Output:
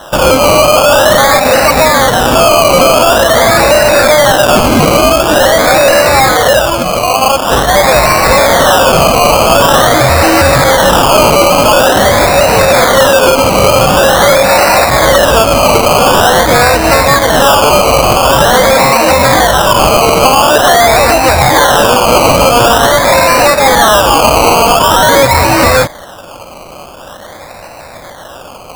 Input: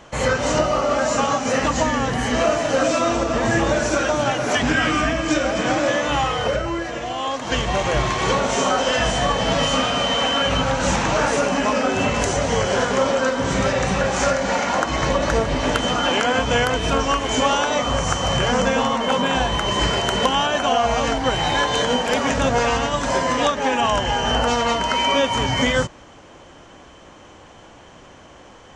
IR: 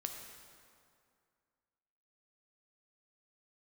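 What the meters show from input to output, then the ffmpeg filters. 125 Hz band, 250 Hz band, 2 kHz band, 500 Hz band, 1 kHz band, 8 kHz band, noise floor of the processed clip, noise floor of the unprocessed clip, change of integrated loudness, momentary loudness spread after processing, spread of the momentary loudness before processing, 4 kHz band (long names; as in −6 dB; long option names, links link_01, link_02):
+11.0 dB, +9.0 dB, +12.5 dB, +14.0 dB, +14.0 dB, +15.0 dB, −30 dBFS, −45 dBFS, +13.5 dB, 2 LU, 2 LU, +11.0 dB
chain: -af "lowshelf=frequency=470:width_type=q:width=3:gain=-6,apsyclip=16.5dB,acrusher=samples=19:mix=1:aa=0.000001:lfo=1:lforange=11.4:lforate=0.46,volume=-1.5dB"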